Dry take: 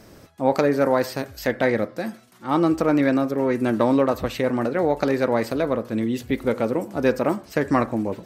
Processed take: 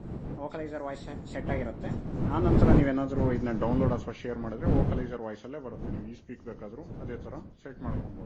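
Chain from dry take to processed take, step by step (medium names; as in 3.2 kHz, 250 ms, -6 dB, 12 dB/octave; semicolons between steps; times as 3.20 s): knee-point frequency compression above 1.9 kHz 1.5:1; wind noise 220 Hz -18 dBFS; Doppler pass-by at 3.03 s, 28 m/s, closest 27 m; trim -8.5 dB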